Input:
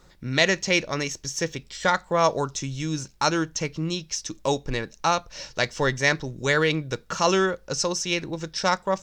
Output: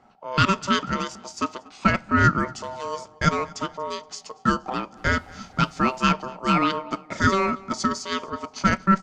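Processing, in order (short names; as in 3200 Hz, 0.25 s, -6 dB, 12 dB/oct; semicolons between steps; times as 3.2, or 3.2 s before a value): bell 590 Hz +12 dB 0.49 oct; ring modulator 770 Hz; 4.96–6.07 added noise pink -53 dBFS; air absorption 53 m; feedback echo 0.237 s, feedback 44%, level -23 dB; on a send at -24 dB: reverb RT60 1.3 s, pre-delay 5 ms; on the sum: mismatched tape noise reduction decoder only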